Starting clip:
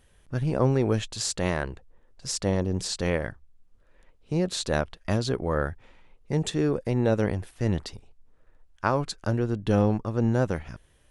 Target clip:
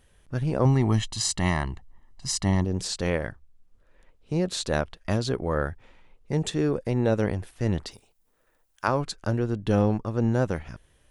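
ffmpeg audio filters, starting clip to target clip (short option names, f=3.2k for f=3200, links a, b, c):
-filter_complex "[0:a]asettb=1/sr,asplit=3[a][b][c];[a]atrim=end=0.654[d];[b]atrim=start=0.65:end=2.65,asetpts=PTS-STARTPTS,afade=t=in:d=0.004:c=qsin,afade=t=out:st=1.996:d=0.004:c=qsin,aecho=1:1:1:0.84,atrim=end_sample=88200[e];[c]atrim=start=2.646[f];[d][e]acrossfade=d=0.004:c1=hsin:c2=qsin[g];[g][f]acrossfade=d=0.004:c1=qsin:c2=hsin,asettb=1/sr,asplit=3[h][i][j];[h]atrim=end=7.914[k];[i]atrim=start=7.91:end=8.88,asetpts=PTS-STARTPTS,afade=t=in:d=0.004:c=qsin,afade=t=out:st=0.966:d=0.004:c=qsin,aemphasis=mode=production:type=bsi[l];[j]atrim=start=8.876[m];[k][l]acrossfade=d=0.004:c1=hsin:c2=qsin[n];[n][m]acrossfade=d=0.004:c1=qsin:c2=hsin"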